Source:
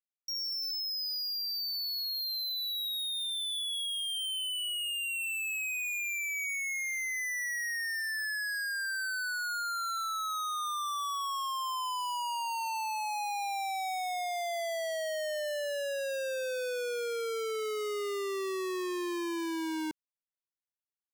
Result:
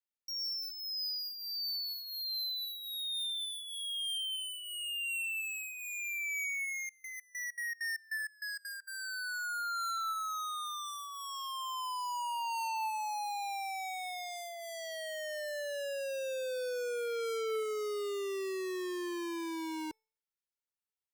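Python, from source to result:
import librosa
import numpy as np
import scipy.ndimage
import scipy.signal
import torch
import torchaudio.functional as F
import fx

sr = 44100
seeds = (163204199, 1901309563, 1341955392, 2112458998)

y = fx.comb_fb(x, sr, f0_hz=440.0, decay_s=0.47, harmonics='all', damping=0.0, mix_pct=30)
y = fx.step_gate(y, sr, bpm=196, pattern='.xx.xx..xx..xx', floor_db=-24.0, edge_ms=4.5, at=(6.87, 8.87), fade=0.02)
y = y + 0.48 * np.pad(y, (int(2.2 * sr / 1000.0), 0))[:len(y)]
y = y * 10.0 ** (-1.5 / 20.0)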